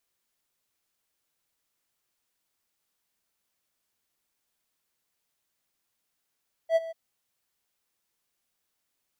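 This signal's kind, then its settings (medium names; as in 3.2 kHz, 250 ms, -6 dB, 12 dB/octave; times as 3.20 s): ADSR triangle 656 Hz, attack 70 ms, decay 30 ms, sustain -17 dB, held 0.22 s, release 20 ms -15 dBFS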